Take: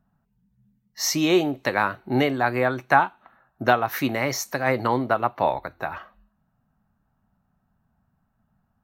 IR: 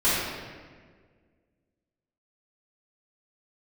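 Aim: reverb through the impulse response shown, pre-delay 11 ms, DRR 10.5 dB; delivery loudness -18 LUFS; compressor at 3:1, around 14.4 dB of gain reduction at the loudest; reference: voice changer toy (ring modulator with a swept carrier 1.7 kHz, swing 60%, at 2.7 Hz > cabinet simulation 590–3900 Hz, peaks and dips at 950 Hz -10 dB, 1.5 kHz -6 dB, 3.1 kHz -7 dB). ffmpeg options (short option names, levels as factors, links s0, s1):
-filter_complex "[0:a]acompressor=threshold=0.0224:ratio=3,asplit=2[s0][s1];[1:a]atrim=start_sample=2205,adelay=11[s2];[s1][s2]afir=irnorm=-1:irlink=0,volume=0.0473[s3];[s0][s3]amix=inputs=2:normalize=0,aeval=exprs='val(0)*sin(2*PI*1700*n/s+1700*0.6/2.7*sin(2*PI*2.7*n/s))':c=same,highpass=590,equalizer=f=950:t=q:w=4:g=-10,equalizer=f=1500:t=q:w=4:g=-6,equalizer=f=3100:t=q:w=4:g=-7,lowpass=f=3900:w=0.5412,lowpass=f=3900:w=1.3066,volume=11.9"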